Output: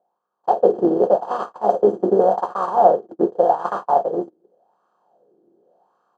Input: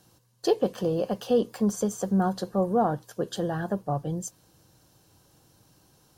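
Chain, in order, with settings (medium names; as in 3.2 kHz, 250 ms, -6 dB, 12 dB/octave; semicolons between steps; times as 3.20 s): spectral levelling over time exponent 0.2; treble shelf 5.3 kHz +3.5 dB; band-stop 460 Hz, Q 12; delay 258 ms -9 dB; gate -16 dBFS, range -45 dB; level rider gain up to 11 dB; dynamic bell 850 Hz, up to +4 dB, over -28 dBFS, Q 0.97; wah-wah 0.87 Hz 330–1200 Hz, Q 5.4; trim +6.5 dB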